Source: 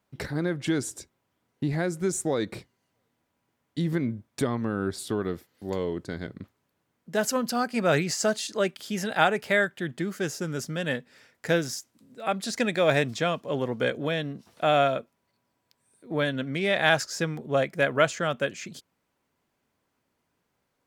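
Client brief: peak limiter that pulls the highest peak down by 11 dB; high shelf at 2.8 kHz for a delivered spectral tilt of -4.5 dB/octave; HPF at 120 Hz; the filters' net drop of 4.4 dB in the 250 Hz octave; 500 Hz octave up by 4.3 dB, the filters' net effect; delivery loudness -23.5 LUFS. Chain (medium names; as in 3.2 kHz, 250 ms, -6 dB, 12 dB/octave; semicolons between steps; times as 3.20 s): high-pass 120 Hz; peaking EQ 250 Hz -9 dB; peaking EQ 500 Hz +7.5 dB; treble shelf 2.8 kHz -4 dB; trim +5.5 dB; peak limiter -10.5 dBFS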